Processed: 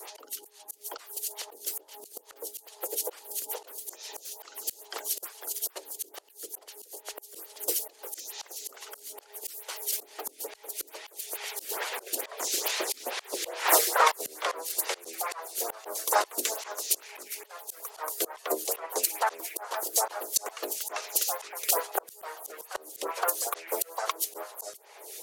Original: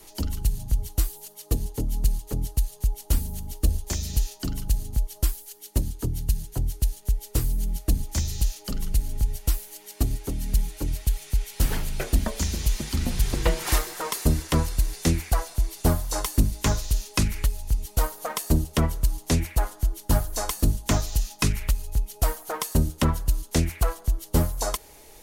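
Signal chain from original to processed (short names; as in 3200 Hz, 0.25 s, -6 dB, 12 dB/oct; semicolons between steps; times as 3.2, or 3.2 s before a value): elliptic high-pass 400 Hz, stop band 60 dB; echoes that change speed 0.742 s, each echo +1 st, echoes 2, each echo -6 dB; auto swell 0.398 s; harmonic-percussive split percussive +8 dB; photocell phaser 2.3 Hz; gain +6 dB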